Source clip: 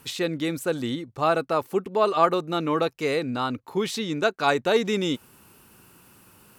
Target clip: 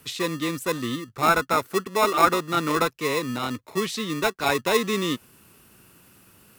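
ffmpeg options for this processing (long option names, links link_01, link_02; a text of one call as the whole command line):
ffmpeg -i in.wav -filter_complex "[0:a]asettb=1/sr,asplit=3[link_01][link_02][link_03];[link_01]atrim=end=1.144[link_04];[link_02]atrim=start=1.14:end=2.9,asetpts=PTS-STARTPTS,afade=type=in:duration=0.004:curve=qsin,afade=type=out:start_time=1.756:duration=0.004:curve=qsin,equalizer=frequency=1400:width_type=o:width=0.48:gain=11[link_05];[link_03]atrim=start=2.896[link_06];[link_04][link_05]acrossfade=duration=0.004:curve1=hsin:curve2=qsin[link_07];[link_07][link_06]acrossfade=duration=0.004:curve1=qsin:curve2=hsin,acrossover=split=160|910|4400[link_08][link_09][link_10][link_11];[link_09]acrusher=samples=29:mix=1:aa=0.000001[link_12];[link_08][link_12][link_10][link_11]amix=inputs=4:normalize=0" out.wav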